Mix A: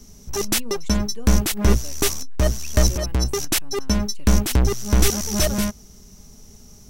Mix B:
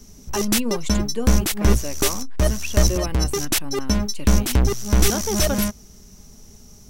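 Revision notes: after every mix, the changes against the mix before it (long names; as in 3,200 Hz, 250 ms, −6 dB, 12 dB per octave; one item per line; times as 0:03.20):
speech +11.5 dB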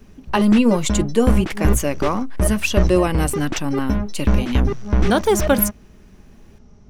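speech +10.5 dB
background: add low-pass filter 2,000 Hz 12 dB per octave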